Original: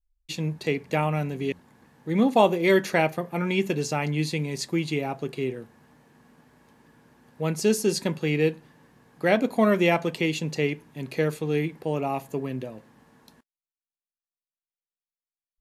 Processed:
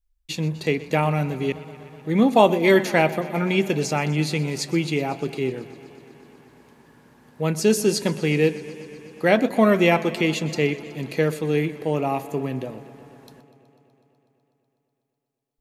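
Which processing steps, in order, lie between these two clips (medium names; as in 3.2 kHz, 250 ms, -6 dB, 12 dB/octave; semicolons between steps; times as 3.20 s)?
modulated delay 124 ms, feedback 79%, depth 68 cents, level -18 dB; trim +3.5 dB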